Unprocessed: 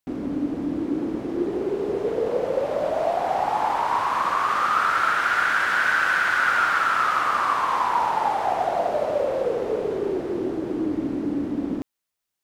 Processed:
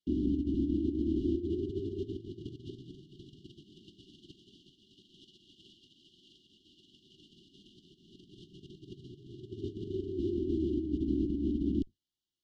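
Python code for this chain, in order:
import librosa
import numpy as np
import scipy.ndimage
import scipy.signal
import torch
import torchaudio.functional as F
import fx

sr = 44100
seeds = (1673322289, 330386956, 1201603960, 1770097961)

y = fx.octave_divider(x, sr, octaves=2, level_db=0.0)
y = scipy.signal.sosfilt(scipy.signal.butter(2, 3600.0, 'lowpass', fs=sr, output='sos'), y)
y = fx.low_shelf(y, sr, hz=170.0, db=-9.0)
y = fx.over_compress(y, sr, threshold_db=-29.0, ratio=-0.5)
y = fx.brickwall_bandstop(y, sr, low_hz=400.0, high_hz=2800.0)
y = F.gain(torch.from_numpy(y), -4.5).numpy()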